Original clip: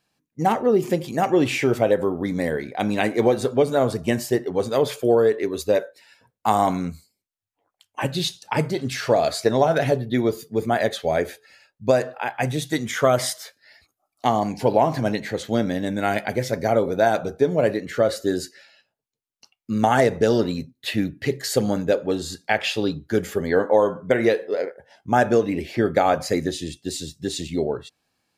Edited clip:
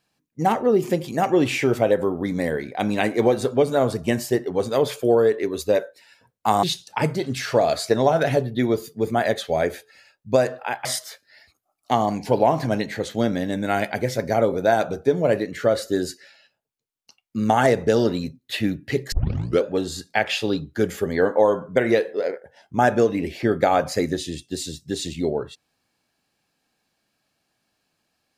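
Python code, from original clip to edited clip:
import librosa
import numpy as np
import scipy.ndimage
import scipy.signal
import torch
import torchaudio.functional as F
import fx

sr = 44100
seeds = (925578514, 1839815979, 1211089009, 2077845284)

y = fx.edit(x, sr, fx.cut(start_s=6.63, length_s=1.55),
    fx.cut(start_s=12.4, length_s=0.79),
    fx.tape_start(start_s=21.46, length_s=0.52), tone=tone)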